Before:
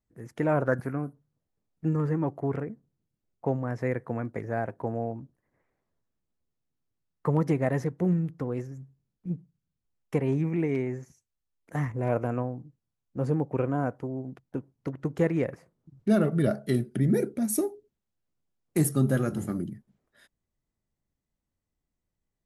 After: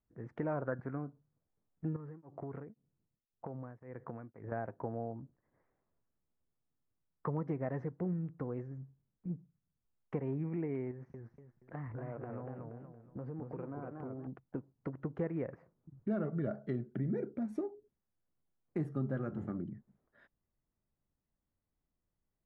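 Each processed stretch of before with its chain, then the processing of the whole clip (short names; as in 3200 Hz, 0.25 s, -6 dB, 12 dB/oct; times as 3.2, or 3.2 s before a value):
1.96–4.52 compressor 12:1, threshold -34 dBFS + beating tremolo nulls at 1.9 Hz
10.91–14.27 inverse Chebyshev low-pass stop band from 10000 Hz + compressor 4:1, threshold -37 dBFS + warbling echo 0.235 s, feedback 37%, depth 181 cents, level -4.5 dB
whole clip: Chebyshev low-pass 1400 Hz, order 2; compressor 2:1, threshold -38 dBFS; gain -1.5 dB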